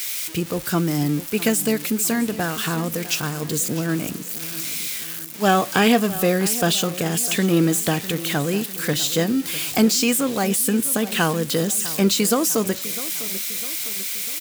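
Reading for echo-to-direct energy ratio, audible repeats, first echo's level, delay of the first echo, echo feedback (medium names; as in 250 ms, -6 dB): -14.5 dB, 4, -16.0 dB, 652 ms, 51%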